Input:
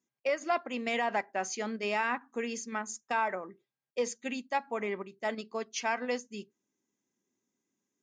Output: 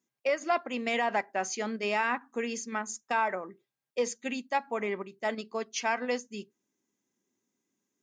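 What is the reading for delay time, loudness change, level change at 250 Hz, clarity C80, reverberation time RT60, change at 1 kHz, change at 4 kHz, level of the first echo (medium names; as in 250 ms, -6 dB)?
no echo, +2.0 dB, +2.0 dB, no reverb, no reverb, +2.0 dB, +2.0 dB, no echo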